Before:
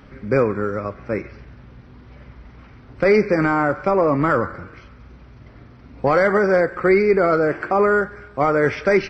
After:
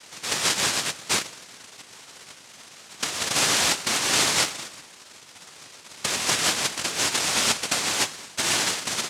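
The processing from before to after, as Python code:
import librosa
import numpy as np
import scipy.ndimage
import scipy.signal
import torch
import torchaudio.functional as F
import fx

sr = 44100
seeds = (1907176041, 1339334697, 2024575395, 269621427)

y = fx.hum_notches(x, sr, base_hz=50, count=3)
y = fx.over_compress(y, sr, threshold_db=-19.0, ratio=-0.5)
y = fx.noise_vocoder(y, sr, seeds[0], bands=1)
y = y * 10.0 ** (-3.5 / 20.0)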